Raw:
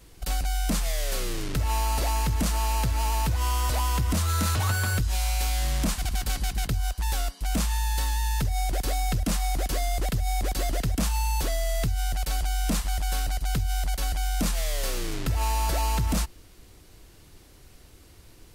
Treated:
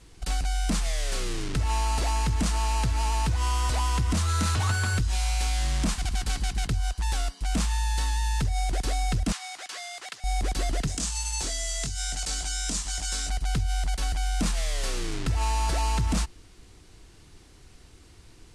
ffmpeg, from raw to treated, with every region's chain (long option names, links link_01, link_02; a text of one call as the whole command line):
ffmpeg -i in.wav -filter_complex "[0:a]asettb=1/sr,asplit=3[link_01][link_02][link_03];[link_01]atrim=end=9.324[link_04];[link_02]atrim=start=9.32:end=10.24,asetpts=PTS-STARTPTS,afade=type=in:duration=0.004:curve=qsin,afade=type=out:start_time=0.916:duration=0.004:curve=qsin,highpass=1100,highshelf=frequency=10000:gain=-12[link_05];[link_03]atrim=start=10.236[link_06];[link_04][link_05]acrossfade=duration=0.004:curve1=hsin:curve2=qsin[link_07];[link_07][link_06]acrossfade=duration=0.004:curve1=qsin:curve2=hsin,asettb=1/sr,asplit=3[link_08][link_09][link_10];[link_08]atrim=end=10.874[link_11];[link_09]atrim=start=10.87:end=13.3,asetpts=PTS-STARTPTS,afade=type=in:duration=0.004:curve=qsin,afade=type=out:start_time=2.426:duration=0.004:curve=qsin,equalizer=frequency=7500:width=0.94:gain=12,asplit=2[link_12][link_13];[link_13]adelay=22,volume=-3dB[link_14];[link_12][link_14]amix=inputs=2:normalize=0,atrim=end_sample=107163,acrossover=split=140|3200|7600[link_15][link_16][link_17][link_18];[link_15]acompressor=threshold=-36dB:ratio=3[link_19];[link_16]acompressor=threshold=-38dB:ratio=3[link_20];[link_17]acompressor=threshold=-32dB:ratio=3[link_21];[link_18]acompressor=threshold=-42dB:ratio=3[link_22];[link_19][link_20][link_21][link_22]amix=inputs=4:normalize=0[link_23];[link_10]atrim=start=13.296[link_24];[link_11][link_23]acrossfade=duration=0.004:curve1=hsin:curve2=qsin[link_25];[link_25][link_24]acrossfade=duration=0.004:curve1=qsin:curve2=hsin,lowpass=frequency=9600:width=0.5412,lowpass=frequency=9600:width=1.3066,equalizer=frequency=570:width=4.2:gain=-5.5" out.wav